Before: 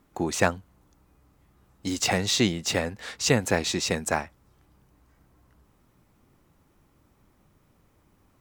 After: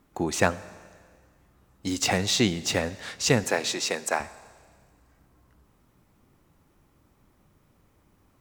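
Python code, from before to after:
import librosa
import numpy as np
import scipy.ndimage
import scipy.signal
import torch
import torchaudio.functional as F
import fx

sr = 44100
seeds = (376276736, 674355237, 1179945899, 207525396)

y = fx.highpass(x, sr, hz=380.0, slope=12, at=(3.44, 4.2))
y = fx.rev_schroeder(y, sr, rt60_s=1.8, comb_ms=29, drr_db=17.0)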